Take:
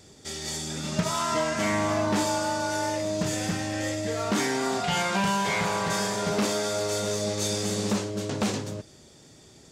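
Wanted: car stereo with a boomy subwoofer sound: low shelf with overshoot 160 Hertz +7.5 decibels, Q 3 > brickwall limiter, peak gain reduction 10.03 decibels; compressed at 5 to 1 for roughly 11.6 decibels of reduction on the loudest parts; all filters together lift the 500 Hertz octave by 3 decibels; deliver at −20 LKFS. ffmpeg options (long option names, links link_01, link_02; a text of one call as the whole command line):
ffmpeg -i in.wav -af "equalizer=frequency=500:width_type=o:gain=5,acompressor=threshold=-34dB:ratio=5,lowshelf=frequency=160:width_type=q:width=3:gain=7.5,volume=19.5dB,alimiter=limit=-12dB:level=0:latency=1" out.wav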